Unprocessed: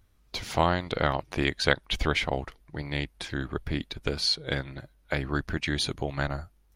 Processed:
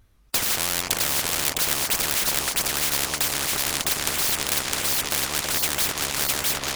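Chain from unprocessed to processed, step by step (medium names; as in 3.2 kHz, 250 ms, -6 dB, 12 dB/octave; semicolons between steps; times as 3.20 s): vibrato 3.6 Hz 66 cents; waveshaping leveller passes 5; on a send: two-band feedback delay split 740 Hz, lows 323 ms, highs 659 ms, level -3 dB; on the sum: spectrum-flattening compressor 10:1; trim -1.5 dB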